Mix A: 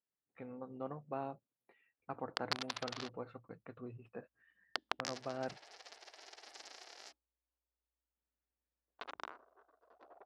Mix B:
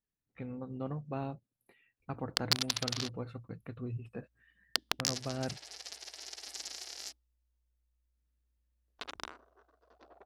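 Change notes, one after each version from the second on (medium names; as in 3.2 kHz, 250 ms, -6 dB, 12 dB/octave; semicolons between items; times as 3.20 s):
master: remove band-pass filter 860 Hz, Q 0.67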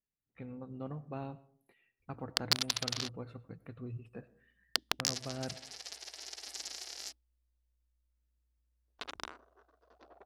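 speech -4.5 dB; reverb: on, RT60 0.50 s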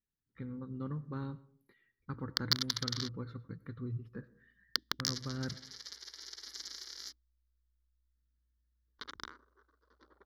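speech +4.5 dB; master: add static phaser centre 2.6 kHz, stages 6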